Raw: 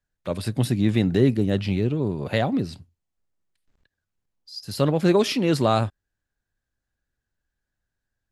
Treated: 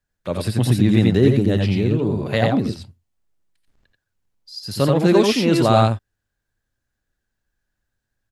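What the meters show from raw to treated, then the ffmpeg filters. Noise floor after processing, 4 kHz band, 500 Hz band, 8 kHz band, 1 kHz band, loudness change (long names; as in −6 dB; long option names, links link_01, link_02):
−80 dBFS, +4.5 dB, +4.5 dB, +4.5 dB, +5.5 dB, +5.0 dB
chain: -af "aecho=1:1:80|89:0.398|0.668,volume=2.5dB"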